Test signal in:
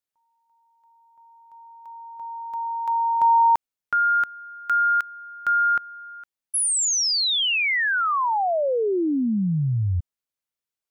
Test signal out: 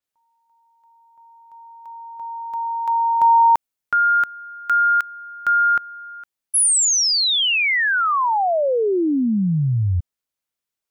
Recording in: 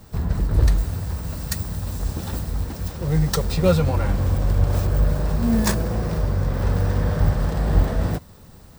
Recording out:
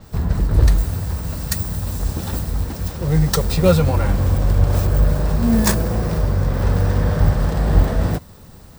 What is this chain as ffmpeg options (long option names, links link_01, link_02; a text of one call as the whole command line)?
ffmpeg -i in.wav -af "adynamicequalizer=threshold=0.00794:dfrequency=7900:dqfactor=0.7:tfrequency=7900:tqfactor=0.7:attack=5:release=100:ratio=0.375:range=2:mode=boostabove:tftype=highshelf,volume=3.5dB" out.wav